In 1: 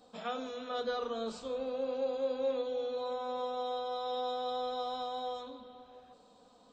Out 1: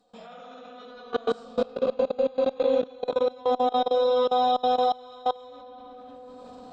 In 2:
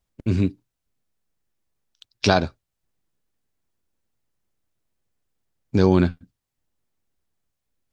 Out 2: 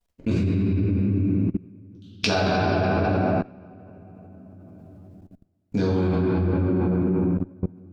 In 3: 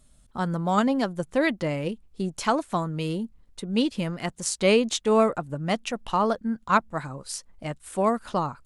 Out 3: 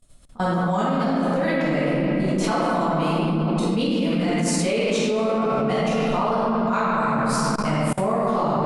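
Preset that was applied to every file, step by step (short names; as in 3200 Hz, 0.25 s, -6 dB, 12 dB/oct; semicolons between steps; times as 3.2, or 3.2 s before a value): shoebox room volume 180 m³, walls hard, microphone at 1.8 m; level quantiser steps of 23 dB; added harmonics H 2 -17 dB, 4 -27 dB, 7 -42 dB, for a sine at -5 dBFS; gain +2 dB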